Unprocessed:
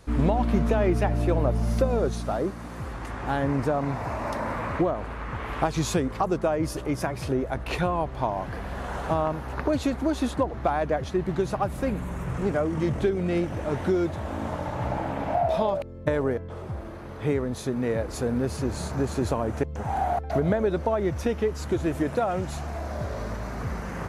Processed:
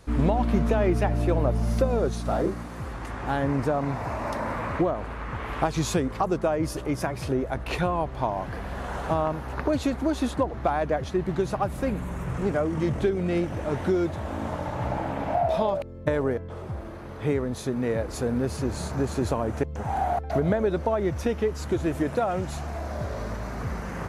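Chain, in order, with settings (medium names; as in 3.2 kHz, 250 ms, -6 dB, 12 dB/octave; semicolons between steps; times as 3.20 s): 2.22–2.63 s: doubling 34 ms -3.5 dB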